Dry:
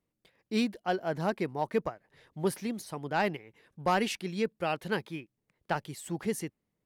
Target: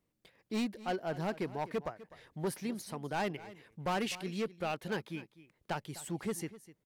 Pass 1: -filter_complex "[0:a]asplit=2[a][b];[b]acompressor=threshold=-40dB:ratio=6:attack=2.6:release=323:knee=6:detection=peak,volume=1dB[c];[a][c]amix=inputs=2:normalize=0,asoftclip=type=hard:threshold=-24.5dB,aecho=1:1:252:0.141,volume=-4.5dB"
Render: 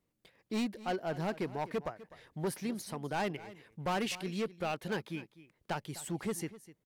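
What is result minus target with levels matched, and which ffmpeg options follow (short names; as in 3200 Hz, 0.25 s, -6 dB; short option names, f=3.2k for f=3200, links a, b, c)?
compressor: peak gain reduction -5.5 dB
-filter_complex "[0:a]asplit=2[a][b];[b]acompressor=threshold=-46.5dB:ratio=6:attack=2.6:release=323:knee=6:detection=peak,volume=1dB[c];[a][c]amix=inputs=2:normalize=0,asoftclip=type=hard:threshold=-24.5dB,aecho=1:1:252:0.141,volume=-4.5dB"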